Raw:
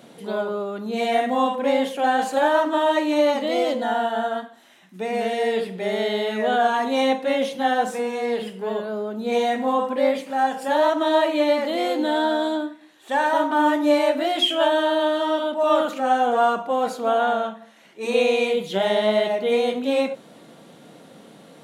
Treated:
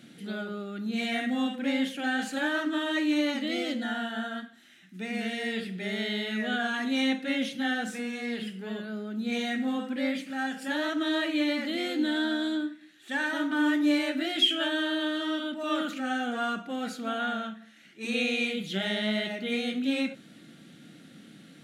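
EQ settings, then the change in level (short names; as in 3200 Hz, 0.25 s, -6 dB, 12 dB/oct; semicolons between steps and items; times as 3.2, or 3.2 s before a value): band shelf 680 Hz -14 dB; high shelf 7700 Hz -6.5 dB; notch 1000 Hz, Q 6.2; -1.5 dB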